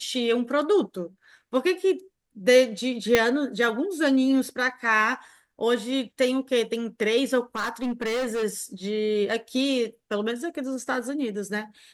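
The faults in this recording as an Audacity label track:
3.150000	3.150000	pop -4 dBFS
7.550000	8.440000	clipped -24 dBFS

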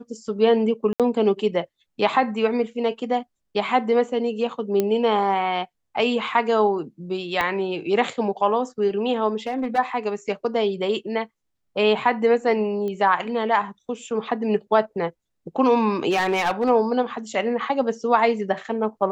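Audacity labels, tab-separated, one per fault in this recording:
0.930000	1.000000	gap 67 ms
4.800000	4.800000	pop -9 dBFS
7.410000	7.410000	pop -10 dBFS
9.470000	9.790000	clipped -20 dBFS
12.880000	12.880000	pop -20 dBFS
16.100000	16.700000	clipped -17 dBFS

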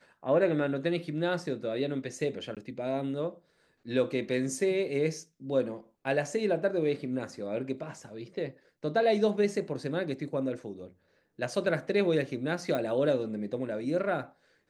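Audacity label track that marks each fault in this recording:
2.550000	2.570000	gap 17 ms
12.750000	12.750000	pop -20 dBFS

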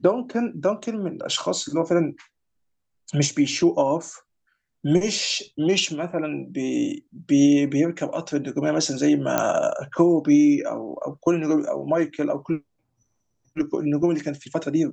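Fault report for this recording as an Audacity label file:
9.380000	9.380000	pop -6 dBFS

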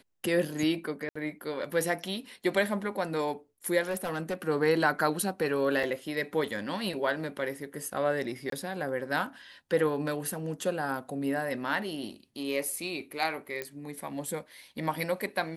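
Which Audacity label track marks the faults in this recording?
1.090000	1.160000	gap 65 ms
3.880000	4.420000	clipped -27.5 dBFS
5.830000	5.840000	gap 5.8 ms
8.500000	8.520000	gap 23 ms
13.620000	13.620000	pop -19 dBFS

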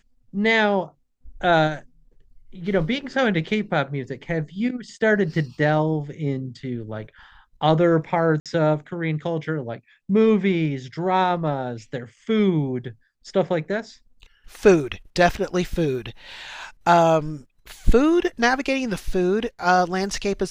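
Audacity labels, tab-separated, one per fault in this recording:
8.400000	8.460000	gap 57 ms

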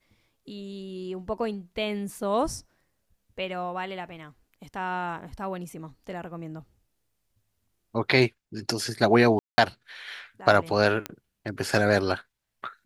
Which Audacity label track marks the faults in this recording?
9.390000	9.580000	gap 0.19 s
11.060000	11.060000	pop -14 dBFS

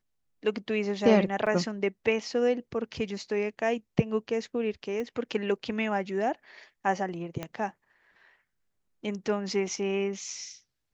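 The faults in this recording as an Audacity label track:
1.460000	1.470000	gap 5.8 ms
5.000000	5.000000	pop -24 dBFS
7.430000	7.430000	pop -19 dBFS

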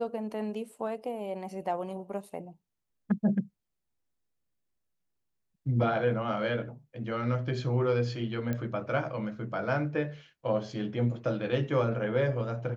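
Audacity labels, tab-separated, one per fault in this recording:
8.530000	8.530000	pop -20 dBFS

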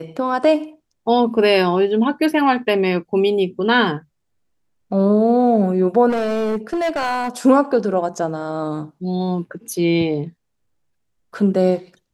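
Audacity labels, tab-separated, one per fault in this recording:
6.090000	7.290000	clipped -17 dBFS

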